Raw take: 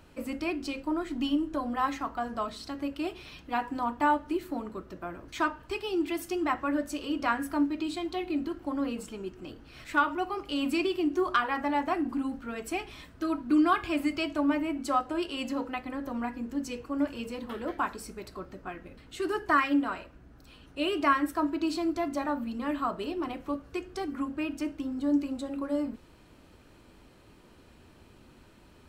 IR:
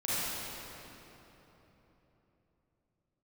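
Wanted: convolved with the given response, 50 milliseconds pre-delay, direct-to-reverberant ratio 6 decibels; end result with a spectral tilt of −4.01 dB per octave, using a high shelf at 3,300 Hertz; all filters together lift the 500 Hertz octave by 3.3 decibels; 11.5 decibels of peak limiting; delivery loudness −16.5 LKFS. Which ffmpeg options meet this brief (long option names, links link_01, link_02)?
-filter_complex "[0:a]equalizer=frequency=500:width_type=o:gain=5,highshelf=frequency=3300:gain=-7.5,alimiter=limit=-24dB:level=0:latency=1,asplit=2[link_01][link_02];[1:a]atrim=start_sample=2205,adelay=50[link_03];[link_02][link_03]afir=irnorm=-1:irlink=0,volume=-14.5dB[link_04];[link_01][link_04]amix=inputs=2:normalize=0,volume=16dB"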